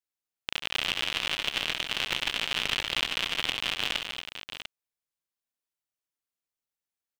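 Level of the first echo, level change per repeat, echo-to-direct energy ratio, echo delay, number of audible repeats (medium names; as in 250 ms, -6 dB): -11.0 dB, no regular repeats, -4.0 dB, 68 ms, 4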